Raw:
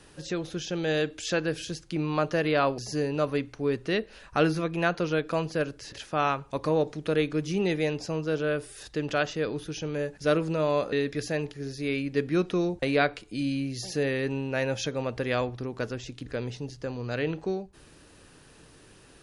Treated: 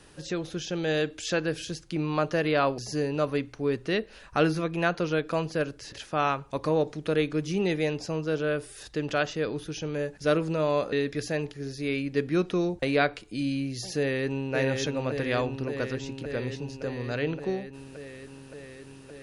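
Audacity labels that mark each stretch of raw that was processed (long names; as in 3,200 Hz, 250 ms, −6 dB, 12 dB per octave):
13.970000	14.540000	delay throw 570 ms, feedback 80%, level −4 dB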